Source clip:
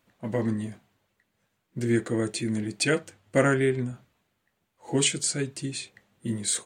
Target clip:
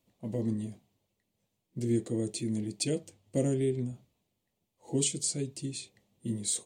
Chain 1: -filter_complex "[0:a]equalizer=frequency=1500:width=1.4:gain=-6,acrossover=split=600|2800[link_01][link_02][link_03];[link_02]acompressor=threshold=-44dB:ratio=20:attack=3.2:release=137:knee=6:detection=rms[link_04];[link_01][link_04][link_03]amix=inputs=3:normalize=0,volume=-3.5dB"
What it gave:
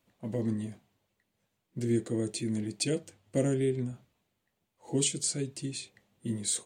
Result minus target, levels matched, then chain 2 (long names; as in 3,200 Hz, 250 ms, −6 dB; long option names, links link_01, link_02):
2,000 Hz band +4.0 dB
-filter_complex "[0:a]equalizer=frequency=1500:width=1.4:gain=-18,acrossover=split=600|2800[link_01][link_02][link_03];[link_02]acompressor=threshold=-44dB:ratio=20:attack=3.2:release=137:knee=6:detection=rms[link_04];[link_01][link_04][link_03]amix=inputs=3:normalize=0,volume=-3.5dB"